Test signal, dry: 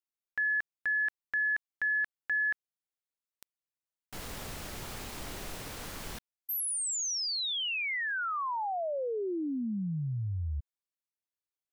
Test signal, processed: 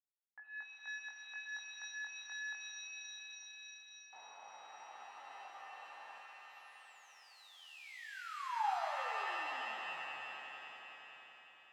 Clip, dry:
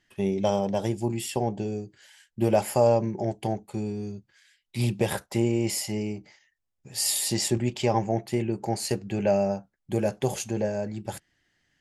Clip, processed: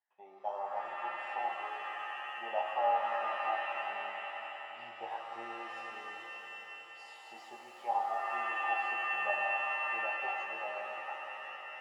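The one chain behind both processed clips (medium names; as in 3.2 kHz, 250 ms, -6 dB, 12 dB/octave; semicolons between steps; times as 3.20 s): level rider gain up to 4 dB; chorus 0.19 Hz, delay 17.5 ms, depth 4.7 ms; ladder band-pass 880 Hz, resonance 75%; echo with a slow build-up 93 ms, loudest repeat 5, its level -16 dB; pitch-shifted reverb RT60 3.1 s, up +7 st, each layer -2 dB, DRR 3.5 dB; trim -4 dB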